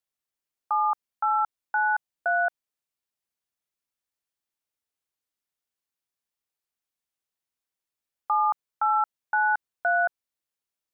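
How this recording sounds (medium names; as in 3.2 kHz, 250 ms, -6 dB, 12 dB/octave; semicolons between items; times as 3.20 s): noise floor -89 dBFS; spectral tilt +0.5 dB/octave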